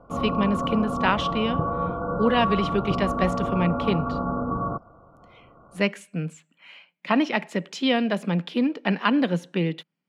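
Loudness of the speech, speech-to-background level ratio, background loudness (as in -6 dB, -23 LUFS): -25.5 LUFS, 2.0 dB, -27.5 LUFS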